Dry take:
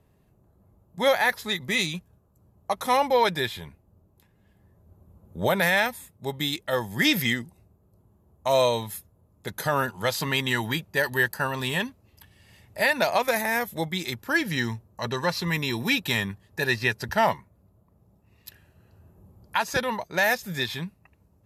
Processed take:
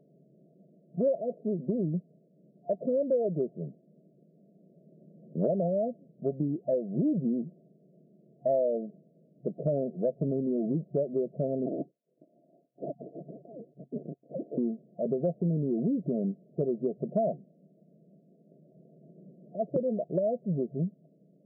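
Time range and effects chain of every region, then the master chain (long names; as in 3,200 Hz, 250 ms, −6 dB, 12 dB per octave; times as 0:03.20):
0:11.66–0:14.58: gain into a clipping stage and back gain 21 dB + voice inversion scrambler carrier 3,600 Hz
whole clip: brick-wall band-pass 130–700 Hz; downward compressor 4 to 1, threshold −31 dBFS; level +5.5 dB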